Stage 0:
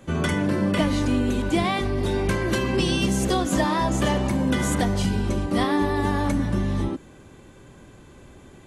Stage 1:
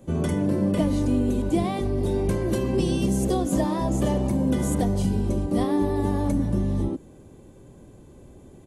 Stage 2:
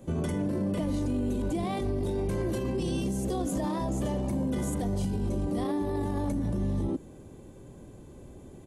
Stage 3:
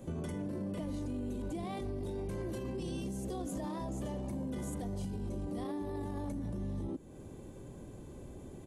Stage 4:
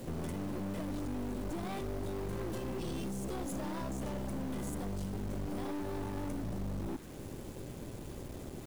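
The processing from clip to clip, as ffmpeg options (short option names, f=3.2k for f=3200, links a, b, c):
-af "firequalizer=gain_entry='entry(510,0);entry(1400,-13);entry(10000,-1)':delay=0.05:min_phase=1"
-af "alimiter=limit=-23dB:level=0:latency=1:release=18"
-af "acompressor=threshold=-43dB:ratio=2"
-af "aeval=exprs='(tanh(141*val(0)+0.6)-tanh(0.6))/141':c=same,acrusher=bits=9:mix=0:aa=0.000001,volume=7dB"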